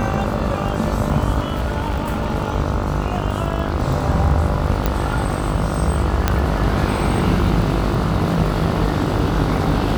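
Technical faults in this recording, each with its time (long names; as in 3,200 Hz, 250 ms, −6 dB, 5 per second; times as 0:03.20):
mains buzz 50 Hz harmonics 29 −24 dBFS
surface crackle 51 per second −27 dBFS
0:01.40–0:02.36: clipping −16 dBFS
0:04.86: click
0:06.28: click −2 dBFS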